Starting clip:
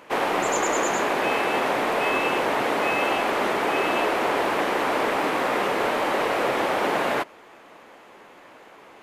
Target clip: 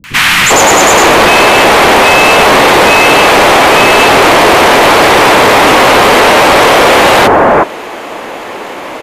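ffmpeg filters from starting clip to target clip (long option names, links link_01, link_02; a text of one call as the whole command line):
ffmpeg -i in.wav -filter_complex "[0:a]acrossover=split=160|1500[link_01][link_02][link_03];[link_03]adelay=40[link_04];[link_02]adelay=400[link_05];[link_01][link_05][link_04]amix=inputs=3:normalize=0,apsyclip=29dB,volume=-1.5dB" out.wav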